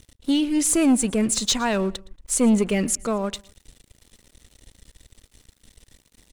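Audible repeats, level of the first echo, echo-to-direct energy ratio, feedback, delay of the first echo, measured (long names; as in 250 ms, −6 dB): 2, −22.5 dB, −22.0 dB, 34%, 115 ms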